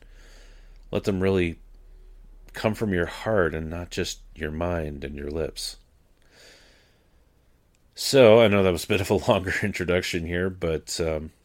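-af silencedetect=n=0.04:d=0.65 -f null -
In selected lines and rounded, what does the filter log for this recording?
silence_start: 0.00
silence_end: 0.93 | silence_duration: 0.93
silence_start: 1.52
silence_end: 2.56 | silence_duration: 1.04
silence_start: 5.70
silence_end: 7.99 | silence_duration: 2.29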